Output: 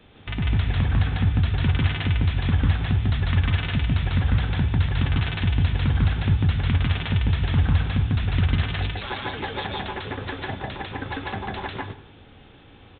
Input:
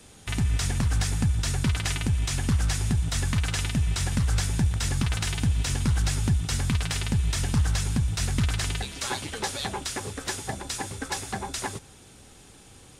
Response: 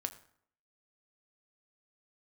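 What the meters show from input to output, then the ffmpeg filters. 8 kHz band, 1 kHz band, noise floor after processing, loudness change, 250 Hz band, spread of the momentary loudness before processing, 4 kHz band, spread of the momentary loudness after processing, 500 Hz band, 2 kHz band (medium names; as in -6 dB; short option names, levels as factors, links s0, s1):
under -40 dB, +3.0 dB, -49 dBFS, +3.0 dB, +3.0 dB, 7 LU, -0.5 dB, 10 LU, +3.5 dB, +3.0 dB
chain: -filter_complex "[0:a]asplit=2[s0][s1];[1:a]atrim=start_sample=2205,adelay=147[s2];[s1][s2]afir=irnorm=-1:irlink=0,volume=1.12[s3];[s0][s3]amix=inputs=2:normalize=0,aresample=8000,aresample=44100"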